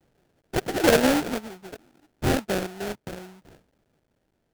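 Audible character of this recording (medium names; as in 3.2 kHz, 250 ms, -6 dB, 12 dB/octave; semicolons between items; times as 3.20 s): a quantiser's noise floor 12-bit, dither triangular; tremolo saw down 0.58 Hz, depth 90%; aliases and images of a low sample rate 1.1 kHz, jitter 20%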